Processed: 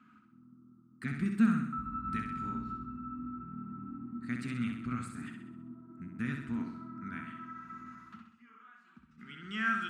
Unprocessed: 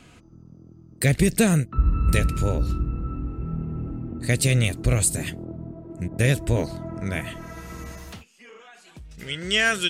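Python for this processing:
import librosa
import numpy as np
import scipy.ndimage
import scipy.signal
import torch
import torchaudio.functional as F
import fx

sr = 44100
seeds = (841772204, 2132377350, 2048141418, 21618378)

y = fx.double_bandpass(x, sr, hz=550.0, octaves=2.5)
y = fx.low_shelf(y, sr, hz=420.0, db=-3.0)
y = fx.room_flutter(y, sr, wall_m=11.1, rt60_s=0.7)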